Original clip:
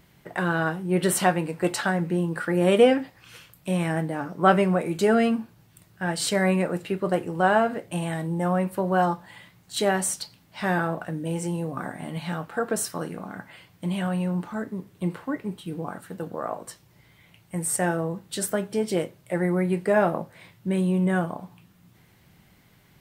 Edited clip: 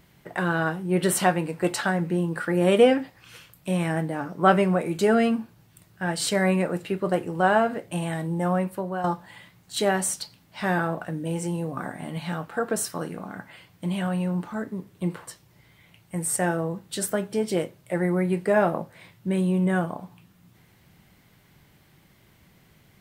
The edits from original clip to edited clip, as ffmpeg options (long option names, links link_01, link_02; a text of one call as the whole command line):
ffmpeg -i in.wav -filter_complex "[0:a]asplit=3[link_01][link_02][link_03];[link_01]atrim=end=9.04,asetpts=PTS-STARTPTS,afade=type=out:start_time=8.55:duration=0.49:silence=0.281838[link_04];[link_02]atrim=start=9.04:end=15.272,asetpts=PTS-STARTPTS,afade=type=in:duration=0.004:curve=hsin:silence=0.281838[link_05];[link_03]atrim=start=16.668[link_06];[link_04][link_05]concat=n=2:v=0:a=1[link_07];[link_07][link_06]acrossfade=duration=0.004:curve1=hsin:curve2=hsin" out.wav